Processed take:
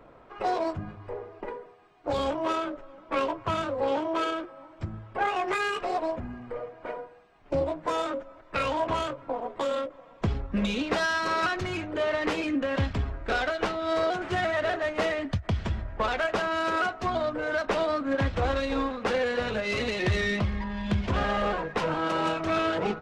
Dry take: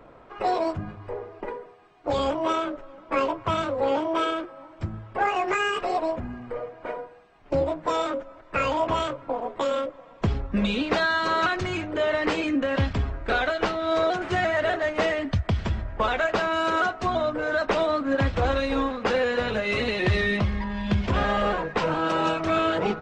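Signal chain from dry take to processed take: self-modulated delay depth 0.088 ms; endings held to a fixed fall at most 290 dB/s; trim -3 dB

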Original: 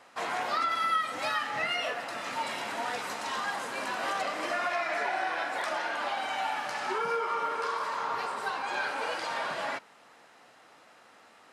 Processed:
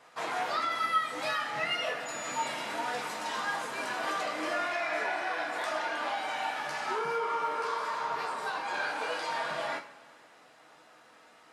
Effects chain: two-slope reverb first 0.28 s, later 2.2 s, from -21 dB, DRR 1 dB; 2.05–2.46 s: whistle 6.9 kHz -38 dBFS; trim -3.5 dB

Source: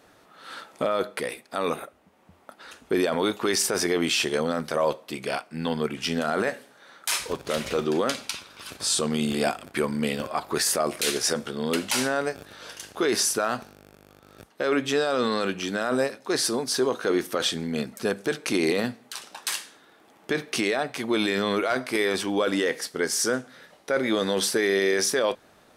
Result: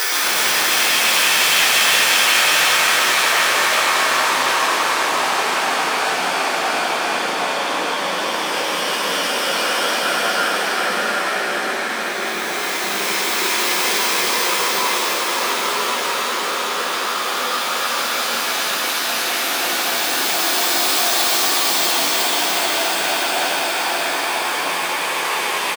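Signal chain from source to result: tracing distortion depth 0.12 ms; high-pass 780 Hz 24 dB/octave; Paulstretch 4.1×, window 1.00 s, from 3.77 s; doubling 12 ms -3 dB; on a send: feedback echo behind a high-pass 360 ms, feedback 76%, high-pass 1.6 kHz, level -4 dB; on the sum: ever faster or slower copies 121 ms, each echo -6 st, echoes 3; trim +7.5 dB

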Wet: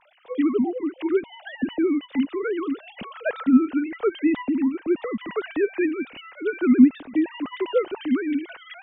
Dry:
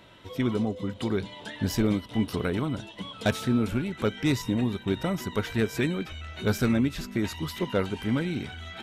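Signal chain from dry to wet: formants replaced by sine waves; bass shelf 190 Hz +11.5 dB; trim +1.5 dB

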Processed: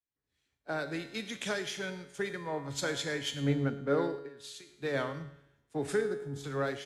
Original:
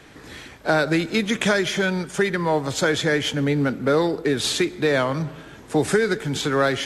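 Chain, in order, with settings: 4.17–4.69 s: compression 8:1, threshold -28 dBFS, peak gain reduction 12 dB; delay 110 ms -16 dB; level rider gain up to 11.5 dB; 6.01–6.44 s: peaking EQ 2.6 kHz -14 dB 1.4 oct; feedback comb 140 Hz, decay 1.8 s, mix 80%; three bands expanded up and down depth 100%; trim -8 dB

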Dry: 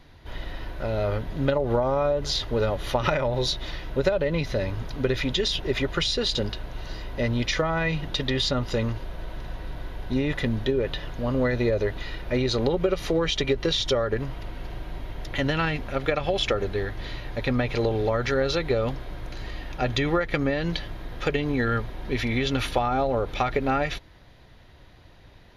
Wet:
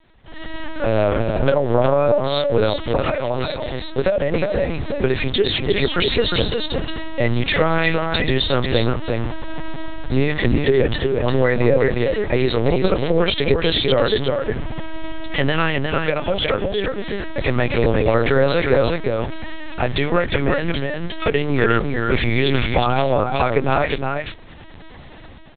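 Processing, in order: hum notches 50/100/150/200/250/300 Hz; level rider gain up to 15.5 dB; on a send: delay 356 ms -4.5 dB; on the sum: LPC vocoder at 8 kHz pitch kept; trim -4 dB

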